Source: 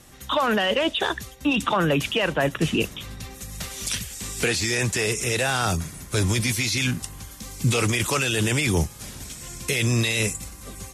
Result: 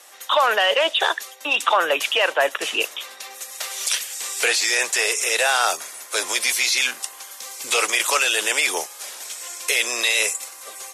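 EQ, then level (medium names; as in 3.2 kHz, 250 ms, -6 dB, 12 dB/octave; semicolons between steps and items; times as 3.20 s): high-pass 530 Hz 24 dB/octave; +5.5 dB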